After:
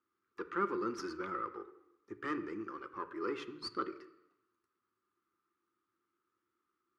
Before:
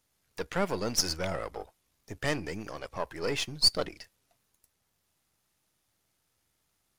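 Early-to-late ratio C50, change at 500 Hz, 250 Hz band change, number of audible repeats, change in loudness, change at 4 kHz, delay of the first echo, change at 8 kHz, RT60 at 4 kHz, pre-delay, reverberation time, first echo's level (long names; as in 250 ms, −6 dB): 13.5 dB, −7.0 dB, −2.5 dB, no echo audible, −9.0 dB, −21.0 dB, no echo audible, −25.5 dB, 0.90 s, 3 ms, 0.85 s, no echo audible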